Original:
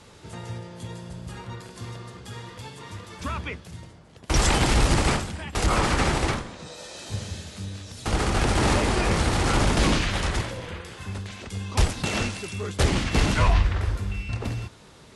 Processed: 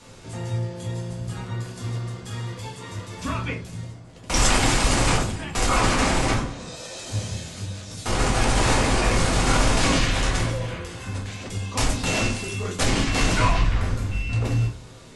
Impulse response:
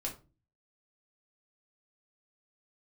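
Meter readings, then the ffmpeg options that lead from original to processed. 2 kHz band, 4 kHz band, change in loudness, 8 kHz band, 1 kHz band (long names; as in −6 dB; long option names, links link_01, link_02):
+2.5 dB, +3.0 dB, +1.0 dB, +5.0 dB, +2.5 dB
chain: -filter_complex "[0:a]equalizer=frequency=7200:width=1.5:gain=4.5,acrossover=split=670[link_01][link_02];[link_01]asoftclip=type=hard:threshold=-25dB[link_03];[link_03][link_02]amix=inputs=2:normalize=0[link_04];[1:a]atrim=start_sample=2205[link_05];[link_04][link_05]afir=irnorm=-1:irlink=0,volume=2dB"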